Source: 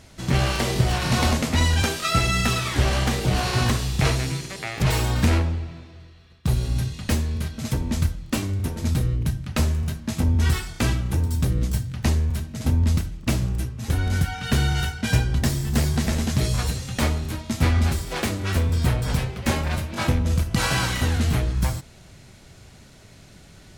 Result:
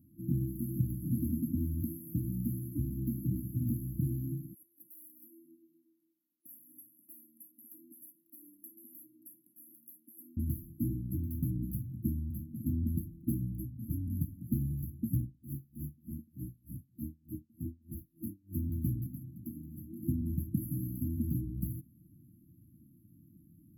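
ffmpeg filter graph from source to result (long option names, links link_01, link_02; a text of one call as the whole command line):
ffmpeg -i in.wav -filter_complex "[0:a]asettb=1/sr,asplit=3[link_01][link_02][link_03];[link_01]atrim=end=4.544[link_04];[link_02]atrim=start=4.54:end=10.37,asetpts=PTS-STARTPTS,afade=type=in:duration=0.004:curve=qsin,afade=type=out:start_time=5.826:duration=0.004:curve=qsin,highpass=frequency=400:width=0.5412,highpass=frequency=400:width=1.3066,tiltshelf=frequency=780:gain=-5.5,acompressor=threshold=-33dB:ratio=8:attack=3.2:release=140:knee=1:detection=peak[link_05];[link_03]atrim=start=10.366[link_06];[link_04][link_05]acrossfade=duration=0.004:curve1=hsin:curve2=qsin[link_07];[link_07][link_06]acrossfade=duration=0.004:curve1=qsin:curve2=hsin,asettb=1/sr,asplit=3[link_08][link_09][link_10];[link_08]atrim=end=15.234[link_11];[link_09]atrim=start=15.23:end=18.55,asetpts=PTS-STARTPTS,afade=type=in:duration=0.004:curve=qsin,afade=type=out:start_time=3.316:duration=0.004:curve=qsin,acompressor=threshold=-22dB:ratio=2.5:attack=3.2:release=140:knee=1:detection=peak,aeval=exprs='val(0)*pow(10,-31*(0.5-0.5*cos(2*PI*3.3*n/s))/20)':channel_layout=same[link_12];[link_10]atrim=start=18.546[link_13];[link_11][link_12]acrossfade=duration=0.004:curve1=hsin:curve2=qsin[link_14];[link_14][link_13]acrossfade=duration=0.004:curve1=qsin:curve2=hsin,asettb=1/sr,asplit=3[link_15][link_16][link_17];[link_15]atrim=end=19.064[link_18];[link_16]atrim=start=19.06:end=20.03,asetpts=PTS-STARTPTS,afade=type=in:duration=0.004:curve=qsin,afade=type=out:start_time=0.966:duration=0.004:curve=qsin,highpass=frequency=130:poles=1,acompressor=threshold=-31dB:ratio=2.5:attack=3.2:release=140:knee=1:detection=peak[link_19];[link_17]atrim=start=20.026[link_20];[link_18][link_19]acrossfade=duration=0.004:curve1=hsin:curve2=qsin[link_21];[link_21][link_20]acrossfade=duration=0.004:curve1=qsin:curve2=hsin,highpass=120,afftfilt=real='re*(1-between(b*sr/4096,340,11000))':imag='im*(1-between(b*sr/4096,340,11000))':win_size=4096:overlap=0.75,acrossover=split=600 7000:gain=0.158 1 0.2[link_22][link_23][link_24];[link_22][link_23][link_24]amix=inputs=3:normalize=0,volume=8.5dB" out.wav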